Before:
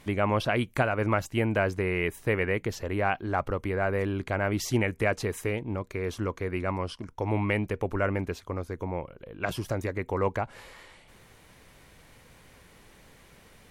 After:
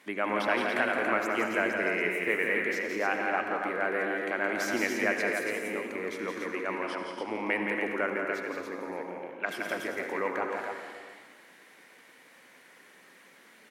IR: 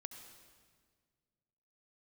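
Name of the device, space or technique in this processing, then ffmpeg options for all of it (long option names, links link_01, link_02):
stadium PA: -filter_complex "[0:a]highpass=frequency=230:width=0.5412,highpass=frequency=230:width=1.3066,equalizer=frequency=1800:width_type=o:width=0.88:gain=7.5,aecho=1:1:169.1|218.7|282.8:0.562|0.282|0.562[link_01];[1:a]atrim=start_sample=2205[link_02];[link_01][link_02]afir=irnorm=-1:irlink=0"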